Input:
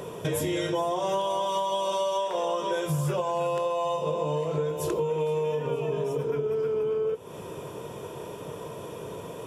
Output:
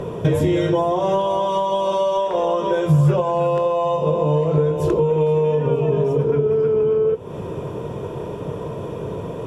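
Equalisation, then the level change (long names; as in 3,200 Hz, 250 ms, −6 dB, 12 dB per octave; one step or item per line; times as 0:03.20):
spectral tilt −2.5 dB per octave
high-shelf EQ 8,600 Hz −8 dB
+6.5 dB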